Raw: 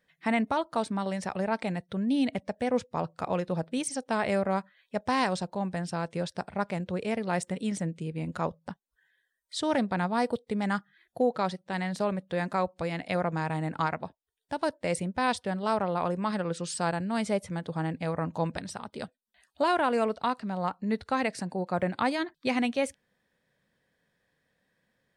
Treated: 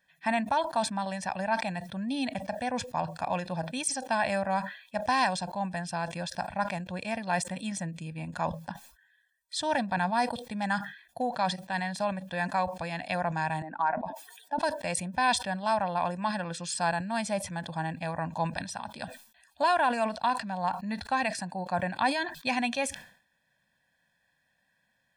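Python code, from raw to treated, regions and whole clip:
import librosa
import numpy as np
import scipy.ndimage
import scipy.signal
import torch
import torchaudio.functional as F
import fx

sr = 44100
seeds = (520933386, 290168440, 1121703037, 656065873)

y = fx.chain(x, sr, fx.spec_expand(power=1.6),
    fx.highpass(hz=250.0, slope=24),
    fx.sustainer(db_per_s=60.0), at=(13.62, 14.59))
y = fx.low_shelf(y, sr, hz=420.0, db=-8.5)
y = y + 0.86 * np.pad(y, (int(1.2 * sr / 1000.0), 0))[:len(y)]
y = fx.sustainer(y, sr, db_per_s=110.0)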